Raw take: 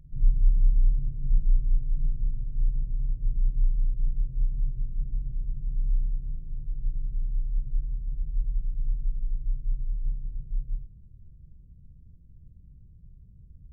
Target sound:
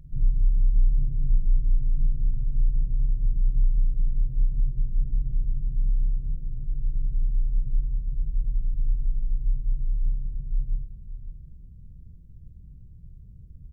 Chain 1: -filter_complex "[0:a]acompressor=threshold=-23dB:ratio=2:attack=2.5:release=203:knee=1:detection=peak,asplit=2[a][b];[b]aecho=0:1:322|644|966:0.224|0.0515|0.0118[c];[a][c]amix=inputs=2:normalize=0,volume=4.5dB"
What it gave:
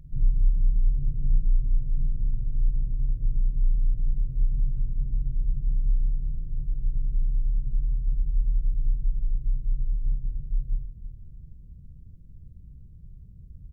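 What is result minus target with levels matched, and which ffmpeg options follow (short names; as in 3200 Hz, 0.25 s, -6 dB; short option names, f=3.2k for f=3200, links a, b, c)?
echo 0.228 s early
-filter_complex "[0:a]acompressor=threshold=-23dB:ratio=2:attack=2.5:release=203:knee=1:detection=peak,asplit=2[a][b];[b]aecho=0:1:550|1100|1650:0.224|0.0515|0.0118[c];[a][c]amix=inputs=2:normalize=0,volume=4.5dB"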